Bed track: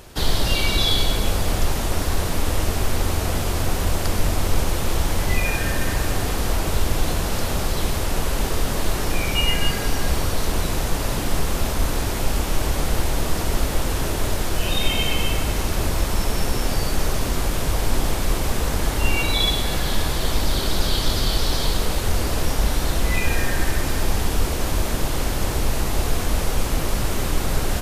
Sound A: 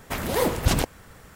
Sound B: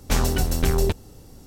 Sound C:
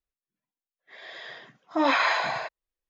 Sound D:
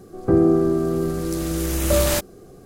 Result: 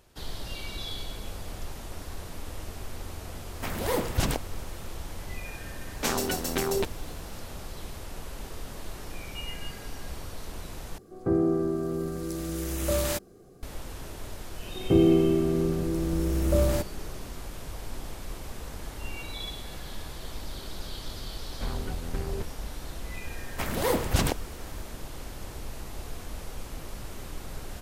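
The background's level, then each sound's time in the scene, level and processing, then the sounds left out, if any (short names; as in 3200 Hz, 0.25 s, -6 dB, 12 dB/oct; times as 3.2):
bed track -17 dB
3.52 add A -5 dB
5.93 add B -2 dB + HPF 240 Hz
10.98 replace with D -8.5 dB
14.62 add D -8.5 dB + tilt shelf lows +6.5 dB, about 850 Hz
21.51 add B -12.5 dB + LPF 1900 Hz
23.48 add A -3 dB
not used: C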